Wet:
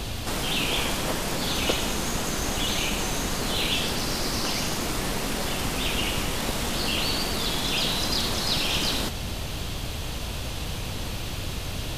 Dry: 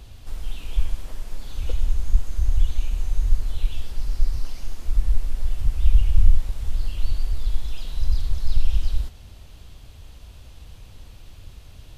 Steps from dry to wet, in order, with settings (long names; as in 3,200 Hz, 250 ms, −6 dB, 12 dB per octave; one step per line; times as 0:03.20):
phase distortion by the signal itself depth 0.12 ms
every bin compressed towards the loudest bin 10 to 1
level −7.5 dB